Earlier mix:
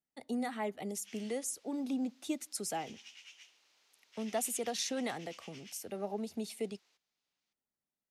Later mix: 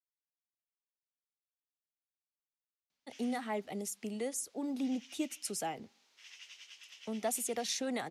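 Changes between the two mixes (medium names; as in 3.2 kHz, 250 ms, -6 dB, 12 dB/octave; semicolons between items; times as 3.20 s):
speech: entry +2.90 s; background: entry +2.05 s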